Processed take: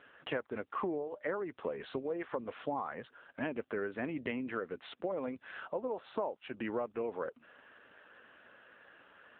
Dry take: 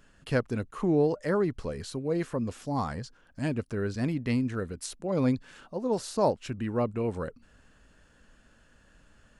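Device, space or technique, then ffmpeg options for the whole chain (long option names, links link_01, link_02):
voicemail: -filter_complex "[0:a]asplit=3[link_01][link_02][link_03];[link_01]afade=type=out:start_time=2.18:duration=0.02[link_04];[link_02]highshelf=frequency=8100:gain=4.5,afade=type=in:start_time=2.18:duration=0.02,afade=type=out:start_time=2.8:duration=0.02[link_05];[link_03]afade=type=in:start_time=2.8:duration=0.02[link_06];[link_04][link_05][link_06]amix=inputs=3:normalize=0,highpass=440,lowpass=3000,acompressor=threshold=-41dB:ratio=8,volume=8.5dB" -ar 8000 -c:a libopencore_amrnb -b:a 7950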